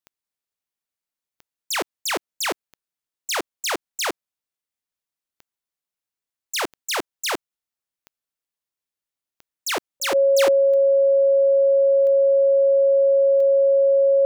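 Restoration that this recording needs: de-click; notch 550 Hz, Q 30

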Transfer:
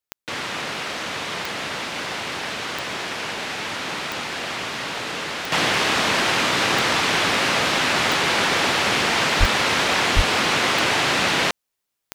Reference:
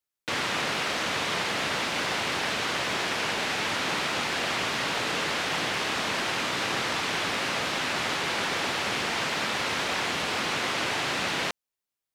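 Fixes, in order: de-click; de-plosive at 9.39/10.15; gain 0 dB, from 5.52 s -8.5 dB

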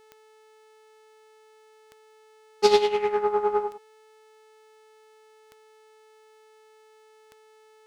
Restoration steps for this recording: de-click; de-hum 435 Hz, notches 25; inverse comb 0.104 s -11.5 dB

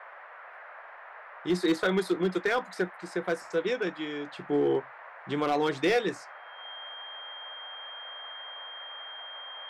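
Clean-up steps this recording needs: clip repair -19 dBFS; notch 3200 Hz, Q 30; noise print and reduce 27 dB

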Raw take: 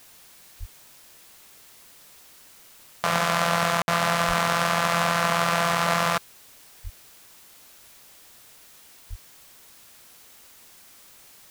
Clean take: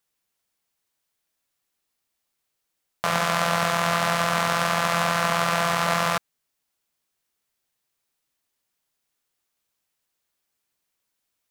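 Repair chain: de-plosive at 0.59/4.27/6.83/9.09; room tone fill 3.82–3.88; denoiser 28 dB, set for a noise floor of -51 dBFS

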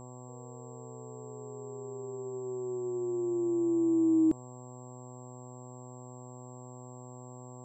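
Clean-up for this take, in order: de-hum 125.3 Hz, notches 9; notch 7600 Hz, Q 30

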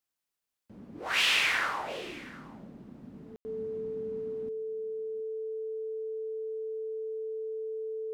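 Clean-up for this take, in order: notch 440 Hz, Q 30; room tone fill 3.36–3.45; inverse comb 0.718 s -19.5 dB

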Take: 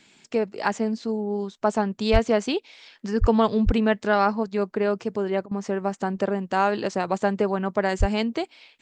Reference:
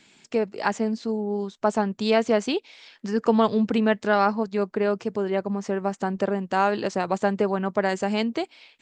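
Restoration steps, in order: clip repair -8 dBFS; de-plosive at 2.12/3.2/3.65/7.99; interpolate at 5.46, 51 ms

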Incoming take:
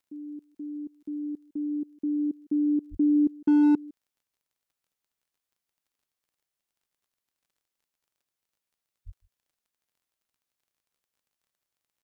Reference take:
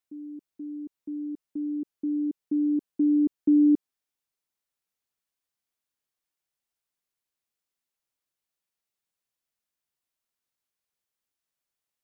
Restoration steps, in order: clip repair -16.5 dBFS; de-click; de-plosive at 2.9/9.05; inverse comb 0.156 s -23.5 dB

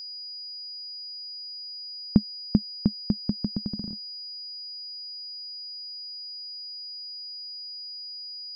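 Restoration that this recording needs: notch 4900 Hz, Q 30

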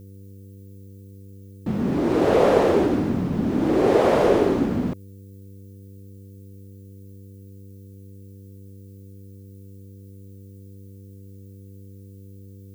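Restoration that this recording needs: de-hum 98.1 Hz, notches 5; expander -35 dBFS, range -21 dB

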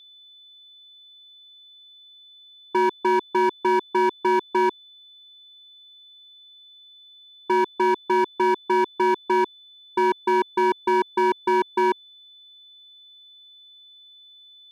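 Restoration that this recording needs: clip repair -16 dBFS; notch 3500 Hz, Q 30

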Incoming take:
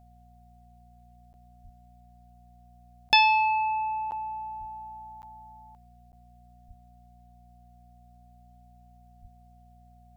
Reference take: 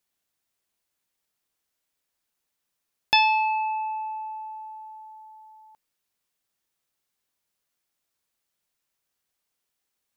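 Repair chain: de-hum 59.8 Hz, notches 4; notch 720 Hz, Q 30; de-plosive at 1.63/4.59/6.67/9.21; interpolate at 1.33/3.09/4.11/5.22/6.12, 9.8 ms

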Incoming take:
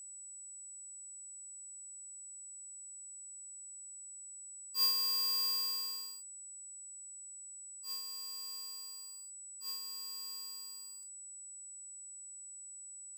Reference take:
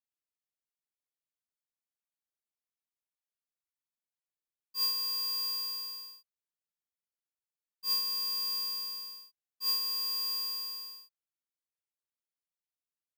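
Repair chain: notch 7900 Hz, Q 30; interpolate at 11.03, 2 ms; gain 0 dB, from 7.61 s +12 dB

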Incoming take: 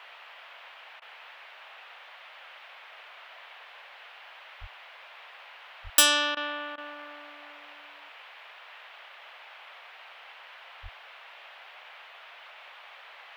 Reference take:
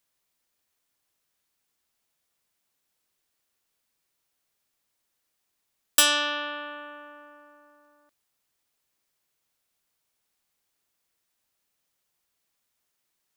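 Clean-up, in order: de-plosive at 4.6/5.83/10.82; interpolate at 1/6.35/6.76, 17 ms; noise print and reduce 29 dB

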